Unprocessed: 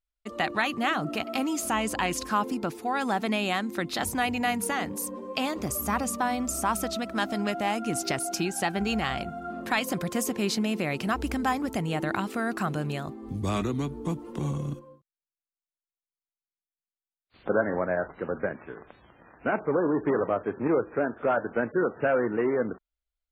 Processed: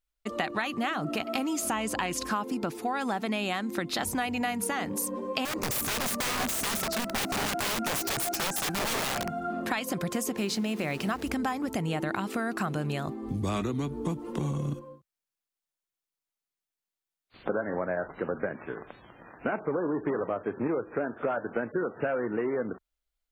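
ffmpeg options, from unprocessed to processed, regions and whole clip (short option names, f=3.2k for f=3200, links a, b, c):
-filter_complex "[0:a]asettb=1/sr,asplit=3[a][b][c];[a]atrim=end=5.454[d];[b]atrim=start=5.45:end=9.29,asetpts=PTS-STARTPTS,afade=t=in:d=0.004:c=qsin,afade=t=out:st=3.836:d=0.004:c=qsin,equalizer=f=3.3k:t=o:w=0.43:g=-12,aeval=exprs='(mod(21.1*val(0)+1,2)-1)/21.1':c=same[e];[c]atrim=start=9.286[f];[d][e]acrossfade=d=0.004:c1=hsin:c2=qsin[g];[g][f]acrossfade=d=0.004:c1=qsin:c2=hsin,asettb=1/sr,asplit=3[h][i][j];[h]atrim=end=10.374[k];[i]atrim=start=10.37:end=11.28,asetpts=PTS-STARTPTS,afade=t=in:d=0.004:c=qsin,afade=t=out:st=0.906:d=0.004:c=qsin,bandreject=f=60:t=h:w=6,bandreject=f=120:t=h:w=6,bandreject=f=180:t=h:w=6,bandreject=f=240:t=h:w=6,bandreject=f=300:t=h:w=6,bandreject=f=360:t=h:w=6,bandreject=f=420:t=h:w=6,bandreject=f=480:t=h:w=6,aeval=exprs='val(0)*gte(abs(val(0)),0.00841)':c=same[l];[j]atrim=start=11.276[m];[k][l]acrossfade=d=0.004:c1=hsin:c2=qsin[n];[n][m]acrossfade=d=0.004:c1=qsin:c2=hsin,equalizer=f=68:t=o:w=0.33:g=-11.5,acompressor=threshold=-31dB:ratio=5,volume=4dB"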